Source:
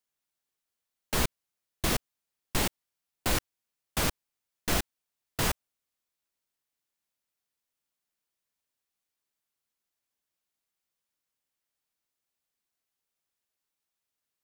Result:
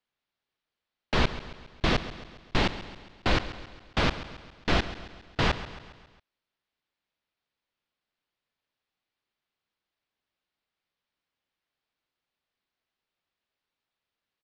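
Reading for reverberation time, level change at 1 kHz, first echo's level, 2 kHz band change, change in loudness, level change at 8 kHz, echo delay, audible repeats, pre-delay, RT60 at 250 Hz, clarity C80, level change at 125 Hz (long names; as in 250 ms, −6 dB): no reverb audible, +4.5 dB, −14.0 dB, +4.5 dB, +2.0 dB, −13.0 dB, 136 ms, 4, no reverb audible, no reverb audible, no reverb audible, +4.5 dB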